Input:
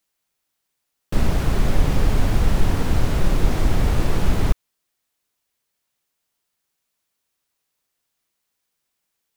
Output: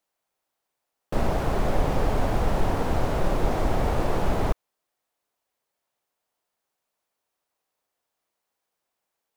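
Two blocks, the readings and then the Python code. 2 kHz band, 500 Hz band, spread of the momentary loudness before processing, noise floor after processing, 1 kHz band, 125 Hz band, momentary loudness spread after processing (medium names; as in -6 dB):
-3.0 dB, +2.0 dB, 3 LU, -83 dBFS, +3.0 dB, -6.5 dB, 3 LU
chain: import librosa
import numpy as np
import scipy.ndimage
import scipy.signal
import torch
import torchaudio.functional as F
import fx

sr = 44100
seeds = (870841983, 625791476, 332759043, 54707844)

y = fx.peak_eq(x, sr, hz=690.0, db=12.0, octaves=2.1)
y = F.gain(torch.from_numpy(y), -7.5).numpy()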